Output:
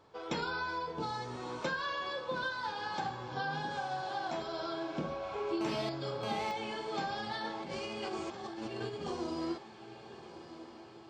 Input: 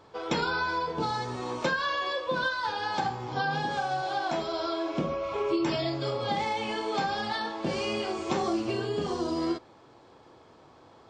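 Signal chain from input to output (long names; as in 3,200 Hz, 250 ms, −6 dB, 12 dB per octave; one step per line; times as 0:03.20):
0:07.44–0:09.11: compressor whose output falls as the input rises −32 dBFS, ratio −0.5
feedback delay with all-pass diffusion 1,216 ms, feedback 57%, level −13 dB
0:05.61–0:06.51: phone interference −33 dBFS
level −7.5 dB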